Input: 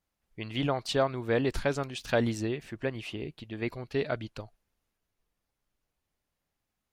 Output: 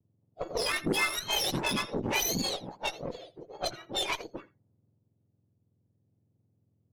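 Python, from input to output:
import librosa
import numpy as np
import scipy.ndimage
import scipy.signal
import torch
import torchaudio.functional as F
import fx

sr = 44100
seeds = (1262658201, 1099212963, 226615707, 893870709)

p1 = fx.octave_mirror(x, sr, pivot_hz=1200.0)
p2 = fx.env_lowpass(p1, sr, base_hz=480.0, full_db=-28.0)
p3 = fx.peak_eq(p2, sr, hz=430.0, db=-5.5, octaves=1.3, at=(2.95, 3.41))
p4 = p3 + 10.0 ** (-20.0 / 20.0) * np.pad(p3, (int(83 * sr / 1000.0), 0))[:len(p3)]
p5 = fx.over_compress(p4, sr, threshold_db=-36.0, ratio=-0.5)
p6 = p4 + (p5 * librosa.db_to_amplitude(-3.0))
p7 = fx.vibrato(p6, sr, rate_hz=0.83, depth_cents=42.0)
y = fx.cheby_harmonics(p7, sr, harmonics=(8,), levels_db=(-20,), full_scale_db=-15.0)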